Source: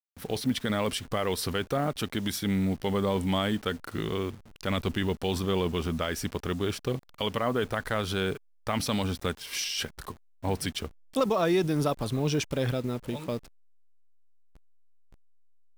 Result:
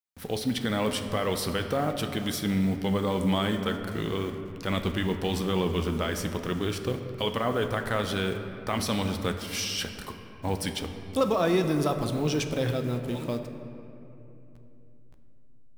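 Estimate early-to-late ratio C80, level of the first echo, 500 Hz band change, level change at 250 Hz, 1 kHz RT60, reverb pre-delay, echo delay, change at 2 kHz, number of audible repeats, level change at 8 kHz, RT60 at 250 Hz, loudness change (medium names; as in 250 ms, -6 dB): 8.5 dB, no echo, +1.0 dB, +1.5 dB, 2.7 s, 4 ms, no echo, +1.0 dB, no echo, +0.5 dB, 4.1 s, +1.0 dB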